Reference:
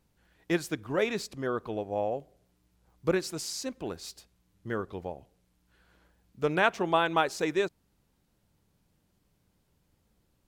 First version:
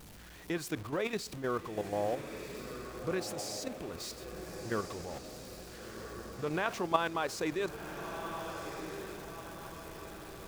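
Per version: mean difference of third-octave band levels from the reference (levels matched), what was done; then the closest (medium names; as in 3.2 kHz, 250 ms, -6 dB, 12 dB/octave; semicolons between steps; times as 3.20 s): 9.5 dB: jump at every zero crossing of -37.5 dBFS; dynamic bell 1.1 kHz, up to +5 dB, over -49 dBFS, Q 6.8; level held to a coarse grid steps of 10 dB; echo that smears into a reverb 1406 ms, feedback 50%, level -8 dB; trim -2 dB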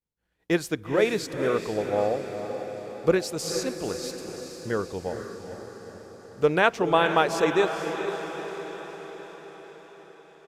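6.5 dB: expander -55 dBFS; peaking EQ 470 Hz +5 dB 0.32 oct; on a send: echo that smears into a reverb 463 ms, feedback 60%, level -8 dB; on the sum: resampled via 32 kHz; trim +3.5 dB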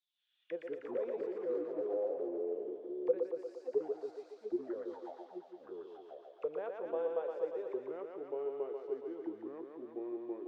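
12.5 dB: bass shelf 320 Hz -4.5 dB; auto-wah 500–3600 Hz, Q 12, down, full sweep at -31.5 dBFS; on a send: thinning echo 117 ms, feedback 77%, high-pass 420 Hz, level -3.5 dB; on the sum: ever faster or slower copies 80 ms, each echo -3 st, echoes 2; trim +1.5 dB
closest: second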